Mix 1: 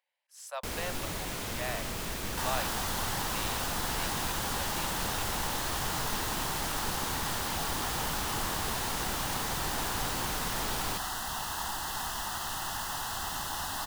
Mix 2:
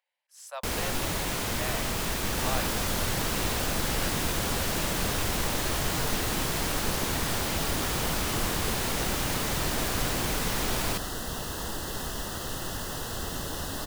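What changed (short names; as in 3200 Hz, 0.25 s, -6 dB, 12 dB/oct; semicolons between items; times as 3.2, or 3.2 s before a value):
first sound +6.0 dB; second sound: add resonant low shelf 650 Hz +8 dB, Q 3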